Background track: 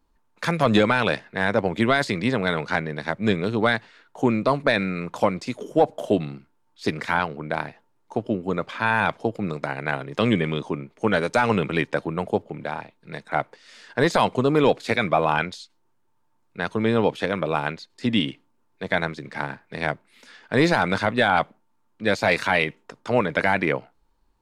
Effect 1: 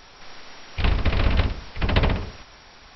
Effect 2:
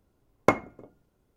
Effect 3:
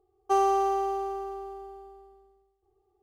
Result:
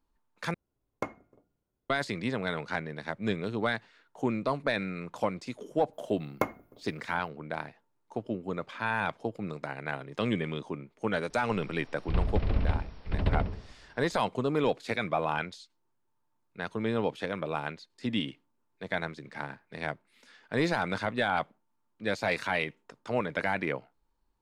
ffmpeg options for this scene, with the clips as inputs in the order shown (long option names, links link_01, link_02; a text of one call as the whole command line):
ffmpeg -i bed.wav -i cue0.wav -i cue1.wav -filter_complex "[2:a]asplit=2[link_01][link_02];[0:a]volume=-9dB[link_03];[link_02]aexciter=amount=5.9:drive=6.4:freq=11000[link_04];[1:a]tiltshelf=frequency=840:gain=6[link_05];[link_03]asplit=2[link_06][link_07];[link_06]atrim=end=0.544[link_08];[link_01]atrim=end=1.36,asetpts=PTS-STARTPTS,volume=-13.5dB[link_09];[link_07]atrim=start=1.896[link_10];[link_04]atrim=end=1.36,asetpts=PTS-STARTPTS,volume=-8dB,afade=type=in:duration=0.004:curve=hsin,afade=type=out:start_time=1.356:duration=0.004:curve=hsin,adelay=261513S[link_11];[link_05]atrim=end=2.95,asetpts=PTS-STARTPTS,volume=-12dB,afade=type=in:duration=0.004:curve=hsin,afade=type=out:start_time=2.946:duration=0.004:curve=hsin,adelay=498330S[link_12];[link_08][link_09]acrossfade=duration=0.004:curve1=hsin:curve2=hsin[link_13];[link_13][link_10]acrossfade=duration=0.004:curve1=hsin:curve2=hsin[link_14];[link_14][link_11][link_12]amix=inputs=3:normalize=0" out.wav